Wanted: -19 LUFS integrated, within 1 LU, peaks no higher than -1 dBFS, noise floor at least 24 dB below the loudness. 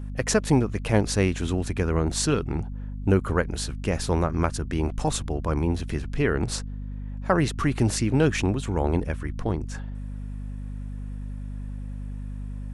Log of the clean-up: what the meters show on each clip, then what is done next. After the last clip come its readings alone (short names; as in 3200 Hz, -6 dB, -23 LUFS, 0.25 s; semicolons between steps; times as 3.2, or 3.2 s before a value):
hum 50 Hz; harmonics up to 250 Hz; hum level -31 dBFS; loudness -25.5 LUFS; peak -6.0 dBFS; loudness target -19.0 LUFS
-> de-hum 50 Hz, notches 5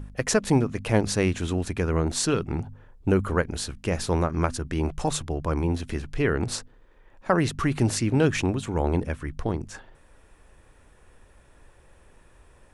hum none; loudness -26.0 LUFS; peak -7.0 dBFS; loudness target -19.0 LUFS
-> gain +7 dB; limiter -1 dBFS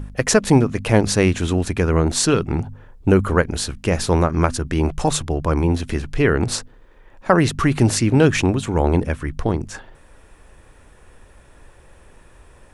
loudness -19.0 LUFS; peak -1.0 dBFS; noise floor -49 dBFS